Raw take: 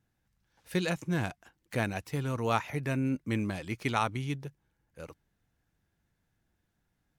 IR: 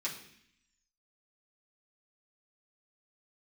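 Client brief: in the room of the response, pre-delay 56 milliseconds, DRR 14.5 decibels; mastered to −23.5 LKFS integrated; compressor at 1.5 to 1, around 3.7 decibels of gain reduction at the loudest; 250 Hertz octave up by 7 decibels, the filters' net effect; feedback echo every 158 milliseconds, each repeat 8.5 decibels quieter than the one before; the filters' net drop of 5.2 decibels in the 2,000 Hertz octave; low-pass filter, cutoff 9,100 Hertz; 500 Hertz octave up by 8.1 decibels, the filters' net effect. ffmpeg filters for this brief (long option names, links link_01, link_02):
-filter_complex "[0:a]lowpass=9100,equalizer=frequency=250:width_type=o:gain=6.5,equalizer=frequency=500:width_type=o:gain=8.5,equalizer=frequency=2000:width_type=o:gain=-7.5,acompressor=threshold=-29dB:ratio=1.5,aecho=1:1:158|316|474|632:0.376|0.143|0.0543|0.0206,asplit=2[link_01][link_02];[1:a]atrim=start_sample=2205,adelay=56[link_03];[link_02][link_03]afir=irnorm=-1:irlink=0,volume=-17dB[link_04];[link_01][link_04]amix=inputs=2:normalize=0,volume=7dB"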